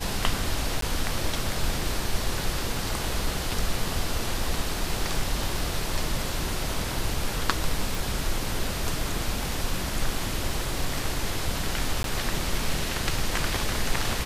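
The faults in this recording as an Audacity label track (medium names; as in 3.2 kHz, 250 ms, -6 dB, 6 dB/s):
0.810000	0.820000	dropout 13 ms
7.950000	7.950000	pop
12.030000	12.040000	dropout 12 ms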